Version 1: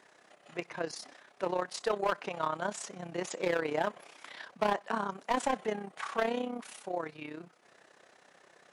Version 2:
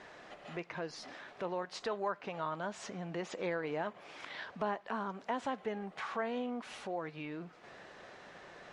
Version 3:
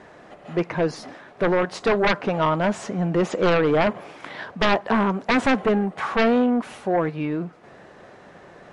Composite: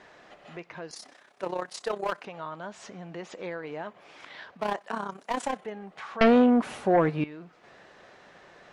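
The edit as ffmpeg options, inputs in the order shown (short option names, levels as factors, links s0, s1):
-filter_complex "[0:a]asplit=2[s0][s1];[1:a]asplit=4[s2][s3][s4][s5];[s2]atrim=end=0.912[s6];[s0]atrim=start=0.908:end=2.252[s7];[s3]atrim=start=2.248:end=4.7[s8];[s1]atrim=start=4.46:end=5.75[s9];[s4]atrim=start=5.51:end=6.212[s10];[2:a]atrim=start=6.208:end=7.242[s11];[s5]atrim=start=7.238[s12];[s6][s7]acrossfade=d=0.004:c1=hsin:c2=hsin[s13];[s13][s8]acrossfade=d=0.004:c1=hsin:c2=hsin[s14];[s14][s9]acrossfade=d=0.24:c1=tri:c2=tri[s15];[s15][s10]acrossfade=d=0.24:c1=tri:c2=tri[s16];[s16][s11]acrossfade=d=0.004:c1=hsin:c2=hsin[s17];[s17][s12]acrossfade=d=0.004:c1=hsin:c2=hsin"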